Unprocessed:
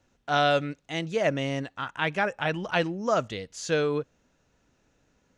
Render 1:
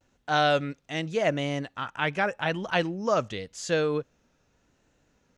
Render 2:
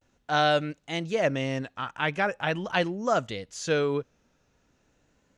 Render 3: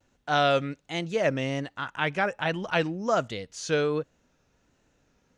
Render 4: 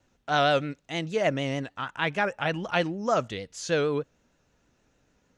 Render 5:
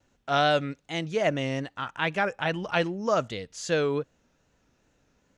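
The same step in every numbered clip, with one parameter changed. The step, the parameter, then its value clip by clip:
vibrato, rate: 0.87 Hz, 0.42 Hz, 1.3 Hz, 6.5 Hz, 2.5 Hz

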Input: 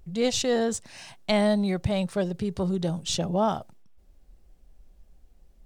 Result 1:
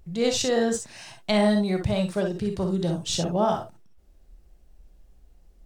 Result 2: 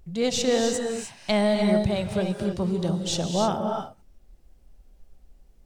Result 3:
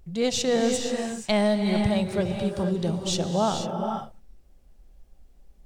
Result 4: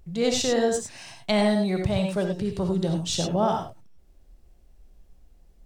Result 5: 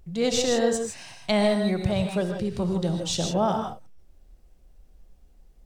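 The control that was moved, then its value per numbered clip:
gated-style reverb, gate: 80 ms, 330 ms, 510 ms, 120 ms, 180 ms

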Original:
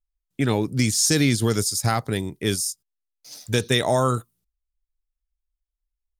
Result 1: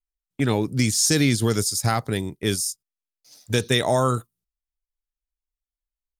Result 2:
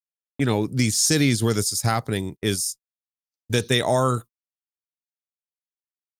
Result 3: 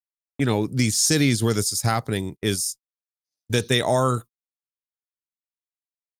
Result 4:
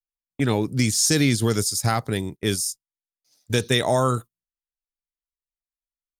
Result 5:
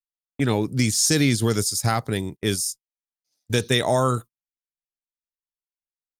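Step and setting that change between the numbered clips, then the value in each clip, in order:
gate, range: -9 dB, -60 dB, -47 dB, -22 dB, -34 dB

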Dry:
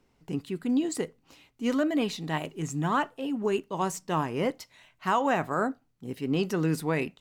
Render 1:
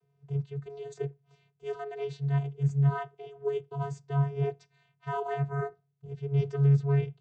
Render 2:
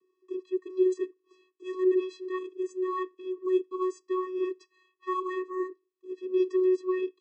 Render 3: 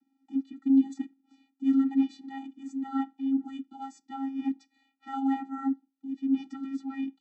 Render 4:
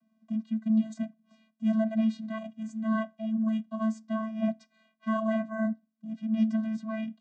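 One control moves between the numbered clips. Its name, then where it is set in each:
vocoder, frequency: 140 Hz, 370 Hz, 270 Hz, 220 Hz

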